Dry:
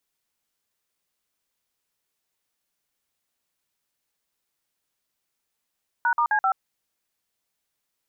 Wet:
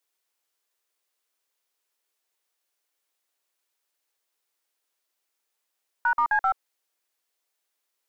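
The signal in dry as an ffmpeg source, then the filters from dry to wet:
-f lavfi -i "aevalsrc='0.0891*clip(min(mod(t,0.13),0.08-mod(t,0.13))/0.002,0,1)*(eq(floor(t/0.13),0)*(sin(2*PI*941*mod(t,0.13))+sin(2*PI*1477*mod(t,0.13)))+eq(floor(t/0.13),1)*(sin(2*PI*941*mod(t,0.13))+sin(2*PI*1209*mod(t,0.13)))+eq(floor(t/0.13),2)*(sin(2*PI*852*mod(t,0.13))+sin(2*PI*1633*mod(t,0.13)))+eq(floor(t/0.13),3)*(sin(2*PI*770*mod(t,0.13))+sin(2*PI*1336*mod(t,0.13))))':duration=0.52:sample_rate=44100"
-filter_complex "[0:a]highpass=frequency=330:width=0.5412,highpass=frequency=330:width=1.3066,acrossover=split=440|740[link_01][link_02][link_03];[link_02]aeval=exprs='clip(val(0),-1,0.0075)':channel_layout=same[link_04];[link_01][link_04][link_03]amix=inputs=3:normalize=0"

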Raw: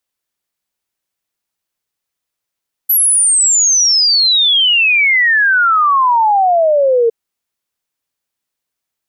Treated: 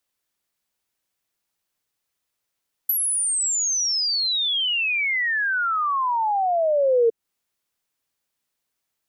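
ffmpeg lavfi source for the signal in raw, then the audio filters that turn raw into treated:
-f lavfi -i "aevalsrc='0.398*clip(min(t,4.21-t)/0.01,0,1)*sin(2*PI*12000*4.21/log(450/12000)*(exp(log(450/12000)*t/4.21)-1))':duration=4.21:sample_rate=44100"
-filter_complex "[0:a]acrossover=split=360[link_01][link_02];[link_02]acompressor=threshold=-22dB:ratio=10[link_03];[link_01][link_03]amix=inputs=2:normalize=0"

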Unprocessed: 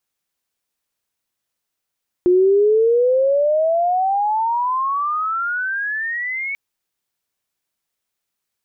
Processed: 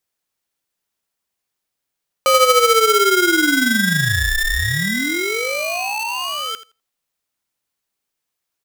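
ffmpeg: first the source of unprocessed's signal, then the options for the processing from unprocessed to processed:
-f lavfi -i "aevalsrc='pow(10,(-10-12*t/4.29)/20)*sin(2*PI*353*4.29/(32*log(2)/12)*(exp(32*log(2)/12*t/4.29)-1))':duration=4.29:sample_rate=44100"
-filter_complex "[0:a]asplit=2[link_01][link_02];[link_02]adelay=83,lowpass=frequency=900:poles=1,volume=-6dB,asplit=2[link_03][link_04];[link_04]adelay=83,lowpass=frequency=900:poles=1,volume=0.32,asplit=2[link_05][link_06];[link_06]adelay=83,lowpass=frequency=900:poles=1,volume=0.32,asplit=2[link_07][link_08];[link_08]adelay=83,lowpass=frequency=900:poles=1,volume=0.32[link_09];[link_03][link_05][link_07][link_09]amix=inputs=4:normalize=0[link_10];[link_01][link_10]amix=inputs=2:normalize=0,aeval=exprs='val(0)*sgn(sin(2*PI*890*n/s))':channel_layout=same"

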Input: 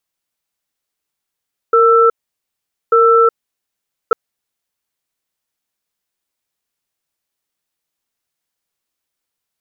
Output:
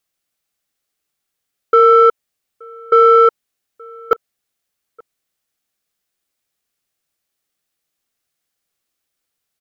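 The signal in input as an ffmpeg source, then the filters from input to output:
-f lavfi -i "aevalsrc='0.335*(sin(2*PI*461*t)+sin(2*PI*1330*t))*clip(min(mod(t,1.19),0.37-mod(t,1.19))/0.005,0,1)':duration=2.4:sample_rate=44100"
-filter_complex "[0:a]bandreject=frequency=950:width=6.6,asplit=2[link_01][link_02];[link_02]asoftclip=type=tanh:threshold=-13dB,volume=-9dB[link_03];[link_01][link_03]amix=inputs=2:normalize=0,asplit=2[link_04][link_05];[link_05]adelay=874.6,volume=-26dB,highshelf=frequency=4000:gain=-19.7[link_06];[link_04][link_06]amix=inputs=2:normalize=0"

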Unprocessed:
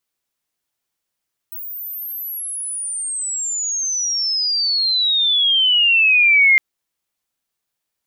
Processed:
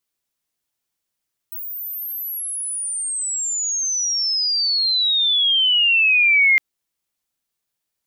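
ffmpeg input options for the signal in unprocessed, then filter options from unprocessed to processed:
-f lavfi -i "aevalsrc='pow(10,(-27.5+19*t/5.06)/20)*sin(2*PI*16000*5.06/log(2100/16000)*(exp(log(2100/16000)*t/5.06)-1))':duration=5.06:sample_rate=44100"
-af "equalizer=frequency=1100:width=0.37:gain=-3"

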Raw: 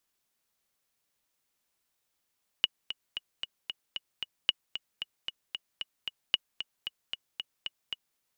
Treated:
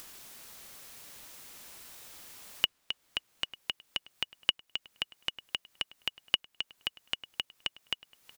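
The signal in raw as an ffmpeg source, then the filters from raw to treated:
-f lavfi -i "aevalsrc='pow(10,(-9.5-11.5*gte(mod(t,7*60/227),60/227))/20)*sin(2*PI*2910*mod(t,60/227))*exp(-6.91*mod(t,60/227)/0.03)':duration=5.55:sample_rate=44100"
-filter_complex "[0:a]acompressor=mode=upward:threshold=-26dB:ratio=2.5,asplit=2[link_01][link_02];[link_02]adelay=896,lowpass=frequency=4000:poles=1,volume=-20dB,asplit=2[link_03][link_04];[link_04]adelay=896,lowpass=frequency=4000:poles=1,volume=0.27[link_05];[link_01][link_03][link_05]amix=inputs=3:normalize=0"

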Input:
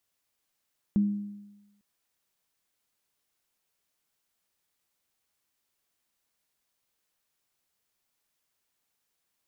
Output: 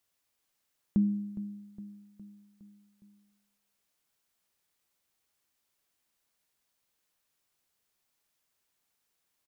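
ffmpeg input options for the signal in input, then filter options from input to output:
-f lavfi -i "aevalsrc='0.119*pow(10,-3*t/1.04)*sin(2*PI*204*t)+0.0133*pow(10,-3*t/0.86)*sin(2*PI*315*t)':duration=0.85:sample_rate=44100"
-af "aecho=1:1:412|824|1236|1648|2060:0.178|0.0996|0.0558|0.0312|0.0175"

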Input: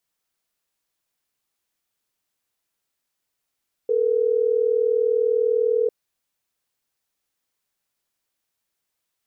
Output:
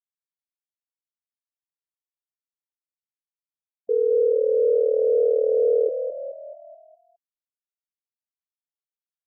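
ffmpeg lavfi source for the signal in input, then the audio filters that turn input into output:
-f lavfi -i "aevalsrc='0.1*(sin(2*PI*440*t)+sin(2*PI*480*t))*clip(min(mod(t,6),2-mod(t,6))/0.005,0,1)':duration=3.12:sample_rate=44100"
-filter_complex "[0:a]asplit=2[link_01][link_02];[link_02]asplit=6[link_03][link_04][link_05][link_06][link_07][link_08];[link_03]adelay=214,afreqshift=38,volume=-9dB[link_09];[link_04]adelay=428,afreqshift=76,volume=-14.2dB[link_10];[link_05]adelay=642,afreqshift=114,volume=-19.4dB[link_11];[link_06]adelay=856,afreqshift=152,volume=-24.6dB[link_12];[link_07]adelay=1070,afreqshift=190,volume=-29.8dB[link_13];[link_08]adelay=1284,afreqshift=228,volume=-35dB[link_14];[link_09][link_10][link_11][link_12][link_13][link_14]amix=inputs=6:normalize=0[link_15];[link_01][link_15]amix=inputs=2:normalize=0,afftfilt=real='re*gte(hypot(re,im),0.02)':imag='im*gte(hypot(re,im),0.02)':win_size=1024:overlap=0.75"

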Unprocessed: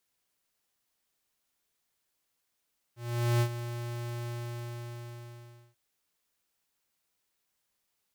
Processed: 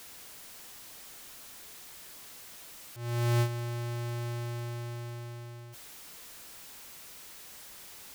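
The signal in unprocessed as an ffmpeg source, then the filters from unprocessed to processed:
-f lavfi -i "aevalsrc='0.0596*(2*lt(mod(119*t,1),0.5)-1)':duration=2.79:sample_rate=44100,afade=type=in:duration=0.448,afade=type=out:start_time=0.448:duration=0.075:silence=0.251,afade=type=out:start_time=1.31:duration=1.48"
-af "aeval=exprs='val(0)+0.5*0.0075*sgn(val(0))':channel_layout=same"

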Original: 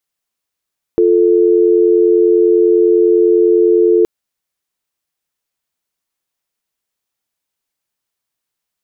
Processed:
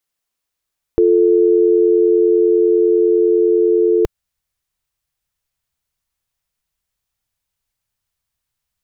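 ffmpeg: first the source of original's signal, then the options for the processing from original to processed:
-f lavfi -i "aevalsrc='0.316*(sin(2*PI*350*t)+sin(2*PI*440*t))':duration=3.07:sample_rate=44100"
-af "asubboost=boost=8.5:cutoff=100"

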